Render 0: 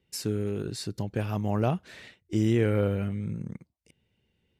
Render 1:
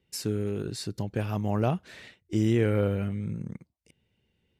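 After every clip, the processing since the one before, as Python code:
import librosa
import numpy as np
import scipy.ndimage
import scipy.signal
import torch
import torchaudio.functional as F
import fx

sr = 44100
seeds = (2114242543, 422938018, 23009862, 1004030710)

y = x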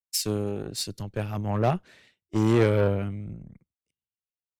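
y = fx.cheby_harmonics(x, sr, harmonics=(6,), levels_db=(-17,), full_scale_db=-14.0)
y = fx.band_widen(y, sr, depth_pct=100)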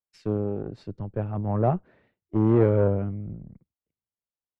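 y = scipy.signal.sosfilt(scipy.signal.butter(2, 1000.0, 'lowpass', fs=sr, output='sos'), x)
y = y * 10.0 ** (1.5 / 20.0)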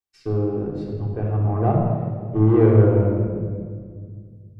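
y = fx.room_shoebox(x, sr, seeds[0], volume_m3=2900.0, walls='mixed', distance_m=3.6)
y = y * 10.0 ** (-1.5 / 20.0)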